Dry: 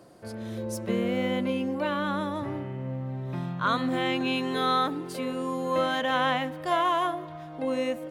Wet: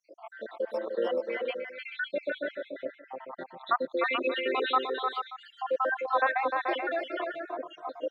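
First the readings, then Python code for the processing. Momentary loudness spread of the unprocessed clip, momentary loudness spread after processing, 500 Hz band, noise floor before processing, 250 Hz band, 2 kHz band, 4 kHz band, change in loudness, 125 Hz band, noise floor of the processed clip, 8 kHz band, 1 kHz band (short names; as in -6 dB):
9 LU, 15 LU, -1.0 dB, -41 dBFS, -12.0 dB, +0.5 dB, -5.0 dB, -2.5 dB, under -30 dB, -59 dBFS, under -25 dB, -2.5 dB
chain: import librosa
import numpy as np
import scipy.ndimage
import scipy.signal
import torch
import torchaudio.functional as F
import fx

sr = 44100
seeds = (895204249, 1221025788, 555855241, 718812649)

p1 = fx.spec_dropout(x, sr, seeds[0], share_pct=83)
p2 = fx.dereverb_blind(p1, sr, rt60_s=1.5)
p3 = scipy.signal.sosfilt(scipy.signal.butter(4, 450.0, 'highpass', fs=sr, output='sos'), p2)
p4 = fx.high_shelf(p3, sr, hz=3100.0, db=-7.5)
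p5 = fx.over_compress(p4, sr, threshold_db=-40.0, ratio=-1.0)
p6 = p4 + (p5 * 10.0 ** (-1.5 / 20.0))
p7 = fx.air_absorb(p6, sr, metres=280.0)
p8 = fx.echo_multitap(p7, sr, ms=(303, 433, 581), db=(-5.5, -8.0, -17.5))
y = p8 * 10.0 ** (5.0 / 20.0)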